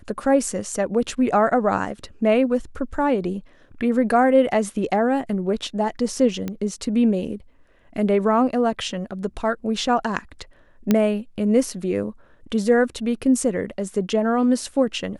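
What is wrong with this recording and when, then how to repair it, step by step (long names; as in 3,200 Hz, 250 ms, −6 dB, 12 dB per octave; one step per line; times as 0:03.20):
0:06.48: click −15 dBFS
0:10.91: click −5 dBFS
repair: click removal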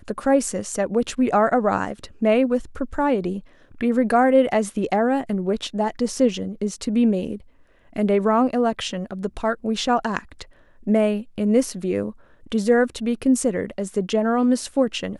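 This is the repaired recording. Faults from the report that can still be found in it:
0:06.48: click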